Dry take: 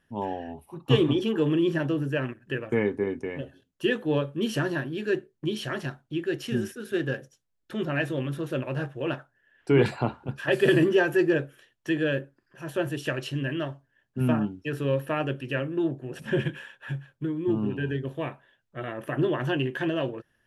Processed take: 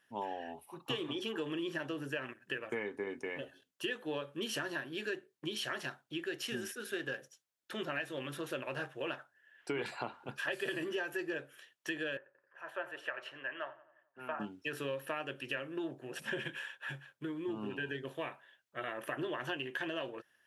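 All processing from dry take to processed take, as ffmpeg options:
-filter_complex "[0:a]asettb=1/sr,asplit=3[s0][s1][s2];[s0]atrim=end=12.174[s3];[s1]atrim=start=12.17:end=14.4,asetpts=PTS-STARTPTS,afade=t=in:d=0.004:c=qsin,afade=t=out:st=2.226:d=0.004:c=qsin,acrossover=split=550 2100:gain=0.0891 1 0.0794[s4][s5][s6];[s4][s5][s6]amix=inputs=3:normalize=0,asplit=2[s7][s8];[s8]adelay=88,lowpass=f=2400:p=1,volume=0.141,asplit=2[s9][s10];[s10]adelay=88,lowpass=f=2400:p=1,volume=0.55,asplit=2[s11][s12];[s12]adelay=88,lowpass=f=2400:p=1,volume=0.55,asplit=2[s13][s14];[s14]adelay=88,lowpass=f=2400:p=1,volume=0.55,asplit=2[s15][s16];[s16]adelay=88,lowpass=f=2400:p=1,volume=0.55[s17];[s7][s9][s11][s13][s15][s17]amix=inputs=6:normalize=0,atrim=end_sample=98343[s18];[s2]atrim=start=14.396[s19];[s3][s18]acrossfade=d=0.004:c1=hsin:c2=qsin[s20];[s20][s19]acrossfade=d=0.004:c1=qsin:c2=hsin,highpass=f=1000:p=1,acompressor=threshold=0.0158:ratio=6,volume=1.19"

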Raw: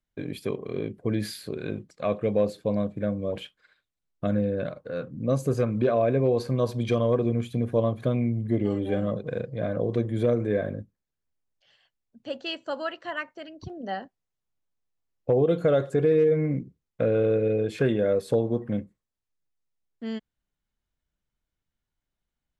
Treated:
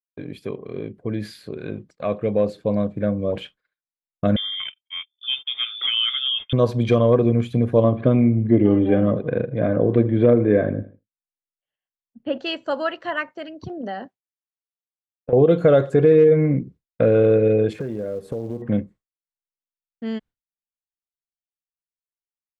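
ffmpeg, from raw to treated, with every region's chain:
-filter_complex "[0:a]asettb=1/sr,asplit=3[s0][s1][s2];[s0]atrim=end=4.364[s3];[s1]atrim=start=4.36:end=6.53,asetpts=PTS-STARTPTS,afade=t=in:d=0.004:c=qsin,afade=t=out:st=2.166:d=0.004:c=qsin,agate=range=0.0316:threshold=0.02:ratio=16:release=100:detection=peak,highpass=f=700:p=1,lowpass=f=3100:t=q:w=0.5098,lowpass=f=3100:t=q:w=0.6013,lowpass=f=3100:t=q:w=0.9,lowpass=f=3100:t=q:w=2.563,afreqshift=-3700[s4];[s2]atrim=start=6.526[s5];[s3][s4]acrossfade=d=0.004:c1=hsin:c2=qsin[s6];[s6][s5]acrossfade=d=0.004:c1=qsin:c2=hsin,asettb=1/sr,asplit=3[s7][s8][s9];[s7]atrim=end=7.844[s10];[s8]atrim=start=7.84:end=12.38,asetpts=PTS-STARTPTS,afade=t=in:d=0.004:c=qsin,afade=t=out:st=4.536:d=0.004:c=qsin,lowpass=f=3200:w=0.5412,lowpass=f=3200:w=1.3066,equalizer=f=290:t=o:w=0.56:g=5,aecho=1:1:79|158|237:0.119|0.0499|0.021,atrim=end_sample=200214[s11];[s9]atrim=start=12.376[s12];[s10][s11]acrossfade=d=0.004:c1=hsin:c2=qsin[s13];[s13][s12]acrossfade=d=0.004:c1=qsin:c2=hsin,asettb=1/sr,asplit=3[s14][s15][s16];[s14]atrim=end=13.294[s17];[s15]atrim=start=13.29:end=15.33,asetpts=PTS-STARTPTS,afade=t=in:d=0.004:c=qsin,afade=t=out:st=2.036:d=0.004:c=qsin,highpass=110,acompressor=threshold=0.0251:ratio=5:attack=3.2:release=140:knee=1:detection=peak[s18];[s16]atrim=start=15.326[s19];[s17][s18]acrossfade=d=0.004:c1=hsin:c2=qsin[s20];[s20][s19]acrossfade=d=0.004:c1=qsin:c2=hsin,asettb=1/sr,asplit=3[s21][s22][s23];[s21]atrim=end=17.734[s24];[s22]atrim=start=17.73:end=18.62,asetpts=PTS-STARTPTS,afade=t=in:d=0.004:c=qsin,afade=t=out:st=0.886:d=0.004:c=qsin,equalizer=f=3900:w=0.58:g=-13.5,acompressor=threshold=0.0251:ratio=6:attack=3.2:release=140:knee=1:detection=peak,acrusher=bits=7:mode=log:mix=0:aa=0.000001[s25];[s23]atrim=start=18.616[s26];[s24][s25]acrossfade=d=0.004:c1=hsin:c2=qsin[s27];[s27][s26]acrossfade=d=0.004:c1=qsin:c2=hsin,agate=range=0.0224:threshold=0.00562:ratio=3:detection=peak,lowpass=f=3300:p=1,dynaudnorm=f=320:g=17:m=2.51"

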